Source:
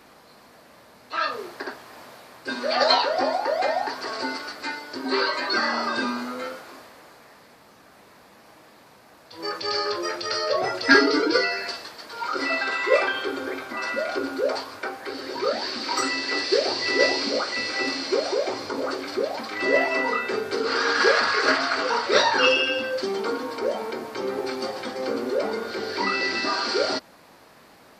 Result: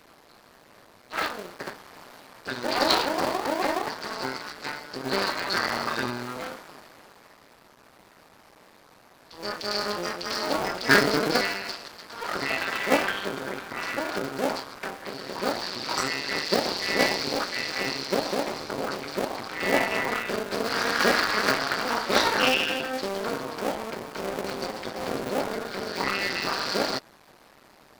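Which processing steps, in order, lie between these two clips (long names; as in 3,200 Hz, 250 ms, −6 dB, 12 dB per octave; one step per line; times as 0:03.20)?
sub-harmonics by changed cycles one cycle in 2, muted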